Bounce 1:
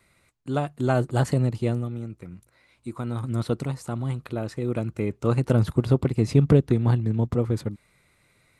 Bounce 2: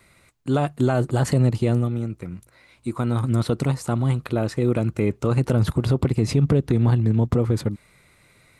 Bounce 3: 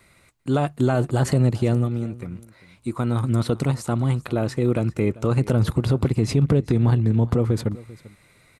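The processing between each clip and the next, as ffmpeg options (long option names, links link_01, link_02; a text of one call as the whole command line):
ffmpeg -i in.wav -af "alimiter=limit=-17dB:level=0:latency=1:release=68,volume=7dB" out.wav
ffmpeg -i in.wav -af "aecho=1:1:393:0.1" out.wav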